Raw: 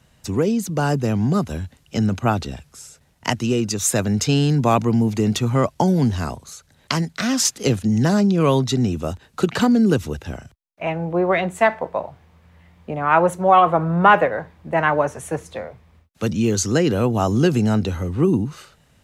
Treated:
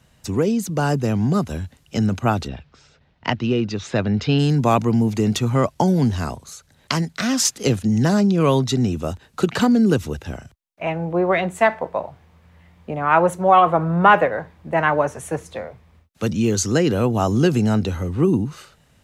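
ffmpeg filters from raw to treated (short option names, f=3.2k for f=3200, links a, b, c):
-filter_complex "[0:a]asplit=3[a][b][c];[a]afade=t=out:st=2.47:d=0.02[d];[b]lowpass=f=4.1k:w=0.5412,lowpass=f=4.1k:w=1.3066,afade=t=in:st=2.47:d=0.02,afade=t=out:st=4.38:d=0.02[e];[c]afade=t=in:st=4.38:d=0.02[f];[d][e][f]amix=inputs=3:normalize=0"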